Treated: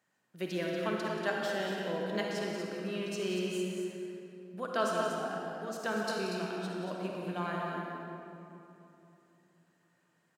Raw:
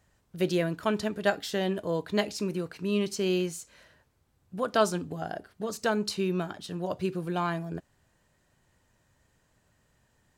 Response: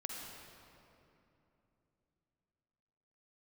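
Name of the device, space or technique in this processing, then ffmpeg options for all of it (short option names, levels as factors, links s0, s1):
stadium PA: -filter_complex "[0:a]highpass=f=160:w=0.5412,highpass=f=160:w=1.3066,equalizer=f=1700:t=o:w=1.5:g=4.5,aecho=1:1:180.8|236.2:0.282|0.447[s0];[1:a]atrim=start_sample=2205[s1];[s0][s1]afir=irnorm=-1:irlink=0,volume=0.473"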